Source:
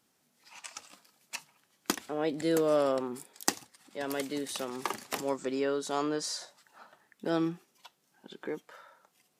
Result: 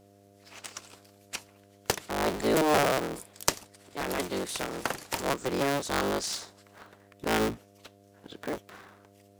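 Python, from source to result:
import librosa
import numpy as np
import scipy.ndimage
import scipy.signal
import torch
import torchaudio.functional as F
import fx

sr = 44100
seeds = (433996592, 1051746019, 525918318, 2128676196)

y = fx.cycle_switch(x, sr, every=3, mode='inverted')
y = fx.dmg_buzz(y, sr, base_hz=100.0, harmonics=7, level_db=-61.0, tilt_db=-1, odd_only=False)
y = F.gain(torch.from_numpy(y), 2.5).numpy()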